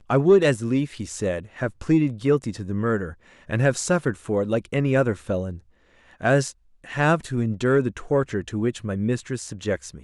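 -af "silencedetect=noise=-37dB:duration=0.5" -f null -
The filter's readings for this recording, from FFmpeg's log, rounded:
silence_start: 5.58
silence_end: 6.21 | silence_duration: 0.63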